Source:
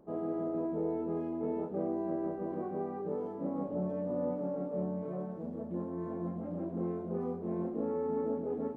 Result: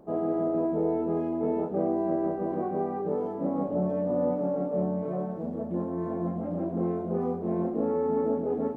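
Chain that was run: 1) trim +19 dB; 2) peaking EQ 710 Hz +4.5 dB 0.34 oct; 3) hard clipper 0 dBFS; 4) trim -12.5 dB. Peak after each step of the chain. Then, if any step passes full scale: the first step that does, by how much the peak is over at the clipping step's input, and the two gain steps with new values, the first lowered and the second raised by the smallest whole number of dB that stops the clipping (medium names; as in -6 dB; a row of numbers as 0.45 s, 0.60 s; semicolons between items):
-4.0 dBFS, -3.5 dBFS, -3.5 dBFS, -16.0 dBFS; nothing clips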